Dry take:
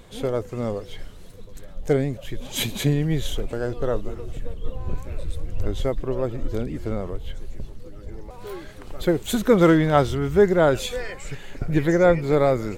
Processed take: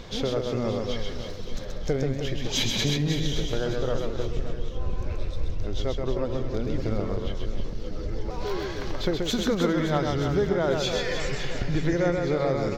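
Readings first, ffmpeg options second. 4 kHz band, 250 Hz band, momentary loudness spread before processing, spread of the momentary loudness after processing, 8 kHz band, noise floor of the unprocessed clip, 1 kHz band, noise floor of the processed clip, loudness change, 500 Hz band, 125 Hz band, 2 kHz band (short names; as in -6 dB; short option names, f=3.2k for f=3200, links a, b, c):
+3.5 dB, -4.0 dB, 21 LU, 10 LU, 0.0 dB, -40 dBFS, -5.5 dB, -33 dBFS, -5.0 dB, -5.0 dB, -2.5 dB, -3.0 dB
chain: -filter_complex "[0:a]acompressor=threshold=-32dB:ratio=4,highshelf=f=7.1k:t=q:w=3:g=-10,asplit=2[a][b];[b]aecho=0:1:130|312|566.8|923.5|1423:0.631|0.398|0.251|0.158|0.1[c];[a][c]amix=inputs=2:normalize=0,volume=6dB"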